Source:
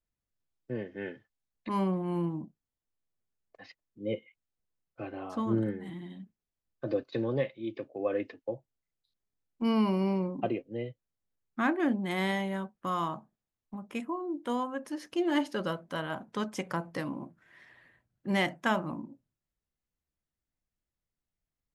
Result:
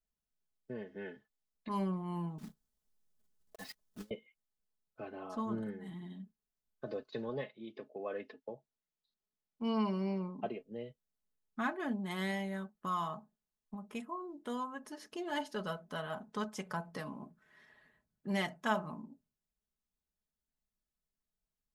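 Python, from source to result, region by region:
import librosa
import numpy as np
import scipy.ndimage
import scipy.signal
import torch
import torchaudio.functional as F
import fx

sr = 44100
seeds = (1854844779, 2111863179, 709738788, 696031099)

y = fx.chain(x, sr, fx.block_float(bits=3),
    fx.bass_treble(bass_db=4, treble_db=3),
    fx.over_compress(threshold_db=-42.0, ratio=-0.5), at=(2.38, 4.11))
y = fx.chain(y, sr, fx.lowpass(hz=5900.0, slope=12),
    fx.low_shelf(hz=68.0, db=-11.0), at=(7.29, 10.6))
y = fx.peak_eq(y, sr, hz=2300.0, db=-5.0, octaves=0.71)
y = y + 0.64 * np.pad(y, (int(4.7 * sr / 1000.0), 0))[:len(y)]
y = fx.dynamic_eq(y, sr, hz=280.0, q=0.86, threshold_db=-40.0, ratio=4.0, max_db=-6)
y = F.gain(torch.from_numpy(y), -5.0).numpy()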